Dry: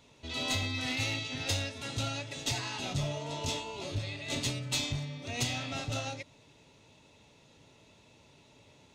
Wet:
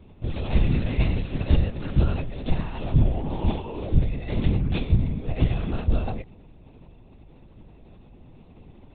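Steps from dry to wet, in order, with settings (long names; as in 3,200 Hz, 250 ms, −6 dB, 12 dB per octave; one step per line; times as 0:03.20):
spectral tilt −4.5 dB per octave
linear-prediction vocoder at 8 kHz whisper
level +2.5 dB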